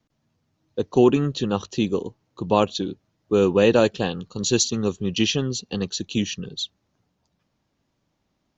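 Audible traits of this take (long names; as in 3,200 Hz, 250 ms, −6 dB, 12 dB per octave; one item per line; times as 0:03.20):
background noise floor −74 dBFS
spectral slope −4.5 dB per octave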